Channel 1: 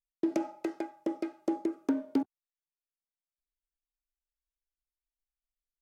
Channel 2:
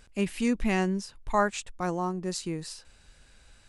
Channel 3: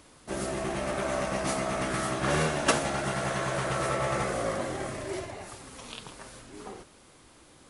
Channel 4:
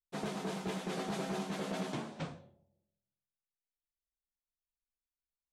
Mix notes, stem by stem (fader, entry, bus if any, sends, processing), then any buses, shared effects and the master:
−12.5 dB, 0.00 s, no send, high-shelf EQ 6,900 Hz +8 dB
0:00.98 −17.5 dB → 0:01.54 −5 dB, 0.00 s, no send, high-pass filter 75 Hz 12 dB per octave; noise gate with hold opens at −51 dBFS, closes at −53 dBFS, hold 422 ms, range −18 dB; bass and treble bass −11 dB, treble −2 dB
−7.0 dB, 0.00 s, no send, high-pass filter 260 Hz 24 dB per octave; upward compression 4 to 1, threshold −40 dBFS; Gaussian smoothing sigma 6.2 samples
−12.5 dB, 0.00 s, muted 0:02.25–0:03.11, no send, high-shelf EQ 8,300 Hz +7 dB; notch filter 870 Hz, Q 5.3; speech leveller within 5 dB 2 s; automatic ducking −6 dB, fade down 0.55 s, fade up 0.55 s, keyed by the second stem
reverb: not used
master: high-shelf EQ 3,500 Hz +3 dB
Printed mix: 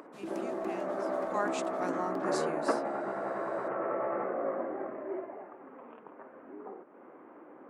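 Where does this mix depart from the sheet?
stem 3 −7.0 dB → −0.5 dB
master: missing high-shelf EQ 3,500 Hz +3 dB

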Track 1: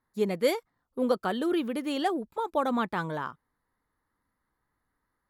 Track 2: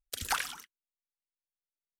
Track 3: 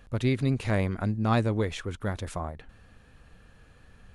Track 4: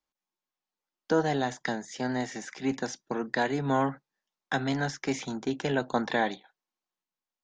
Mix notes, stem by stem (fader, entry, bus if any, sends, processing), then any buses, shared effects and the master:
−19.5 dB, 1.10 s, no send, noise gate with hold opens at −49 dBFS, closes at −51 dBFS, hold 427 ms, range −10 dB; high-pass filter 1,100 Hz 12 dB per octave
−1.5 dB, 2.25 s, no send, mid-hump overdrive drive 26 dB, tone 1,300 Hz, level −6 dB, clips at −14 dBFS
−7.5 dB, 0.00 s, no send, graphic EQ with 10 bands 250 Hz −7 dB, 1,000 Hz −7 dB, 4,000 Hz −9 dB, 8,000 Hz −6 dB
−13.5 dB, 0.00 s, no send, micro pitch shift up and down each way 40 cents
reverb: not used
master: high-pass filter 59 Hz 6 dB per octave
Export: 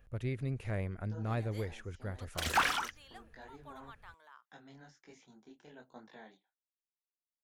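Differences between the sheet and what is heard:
stem 4 −13.5 dB → −22.5 dB
master: missing high-pass filter 59 Hz 6 dB per octave

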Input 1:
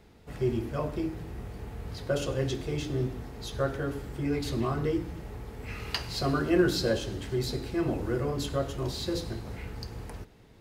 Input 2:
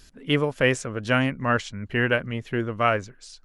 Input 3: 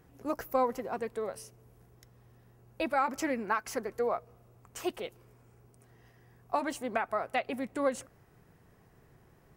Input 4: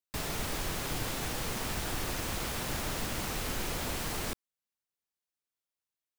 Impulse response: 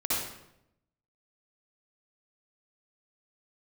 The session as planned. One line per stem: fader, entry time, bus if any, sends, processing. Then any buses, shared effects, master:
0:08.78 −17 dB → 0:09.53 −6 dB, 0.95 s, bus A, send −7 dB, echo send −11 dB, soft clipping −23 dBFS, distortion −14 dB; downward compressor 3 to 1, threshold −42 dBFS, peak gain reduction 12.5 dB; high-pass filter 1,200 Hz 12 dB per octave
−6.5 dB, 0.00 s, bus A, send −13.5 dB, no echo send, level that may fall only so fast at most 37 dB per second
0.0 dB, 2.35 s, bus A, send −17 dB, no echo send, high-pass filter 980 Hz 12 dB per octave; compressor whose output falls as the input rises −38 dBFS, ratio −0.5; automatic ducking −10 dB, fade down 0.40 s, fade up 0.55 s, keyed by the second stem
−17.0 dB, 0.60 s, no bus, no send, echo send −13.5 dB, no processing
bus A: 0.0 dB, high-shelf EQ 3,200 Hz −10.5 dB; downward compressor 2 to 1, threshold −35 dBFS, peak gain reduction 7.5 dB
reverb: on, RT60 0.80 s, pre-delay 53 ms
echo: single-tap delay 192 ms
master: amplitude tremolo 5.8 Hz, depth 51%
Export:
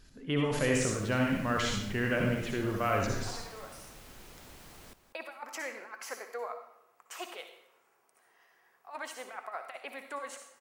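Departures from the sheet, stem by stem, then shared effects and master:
stem 1: muted
master: missing amplitude tremolo 5.8 Hz, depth 51%

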